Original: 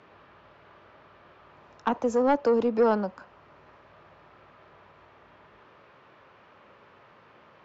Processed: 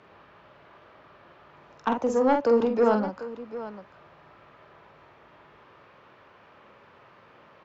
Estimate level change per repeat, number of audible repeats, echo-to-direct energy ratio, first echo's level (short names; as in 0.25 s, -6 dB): no steady repeat, 2, -5.0 dB, -5.5 dB